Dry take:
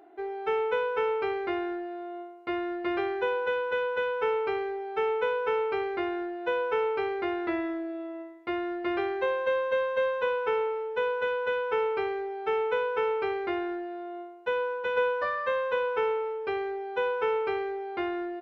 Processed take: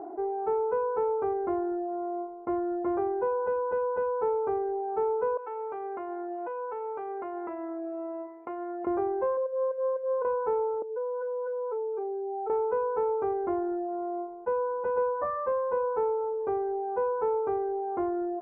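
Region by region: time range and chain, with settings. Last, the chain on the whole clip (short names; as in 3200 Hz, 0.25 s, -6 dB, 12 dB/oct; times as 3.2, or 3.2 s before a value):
5.37–8.87 HPF 840 Hz 6 dB/oct + bell 2600 Hz +5.5 dB 0.57 oct + compressor, threshold -39 dBFS
9.37–10.25 spectral contrast raised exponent 1.8 + negative-ratio compressor -29 dBFS, ratio -0.5
10.82–12.5 spectral contrast raised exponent 2.2 + HPF 470 Hz + compressor 3:1, threshold -36 dBFS
whole clip: Chebyshev low-pass 1000 Hz, order 3; reverb removal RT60 0.54 s; fast leveller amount 50%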